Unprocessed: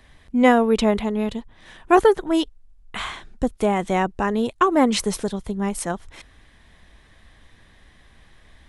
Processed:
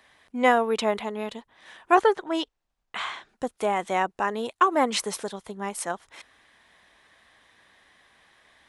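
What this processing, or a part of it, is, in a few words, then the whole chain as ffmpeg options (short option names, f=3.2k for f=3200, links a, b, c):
filter by subtraction: -filter_complex "[0:a]asplit=2[a][b];[b]lowpass=900,volume=-1[c];[a][c]amix=inputs=2:normalize=0,asettb=1/sr,asplit=3[d][e][f];[d]atrim=end=1.944[g];[e]atrim=start=1.94:end=3.29,asetpts=PTS-STARTPTS,afade=t=in:d=0.004:c=qsin,afade=t=out:st=1.346:d=0.004:c=qsin,lowpass=6.9k[h];[f]atrim=start=3.286[i];[g][h]acrossfade=d=0.004:c1=hsin:c2=qsin[j];[j][i]acrossfade=d=0.004:c1=qsin:c2=hsin,volume=-3dB"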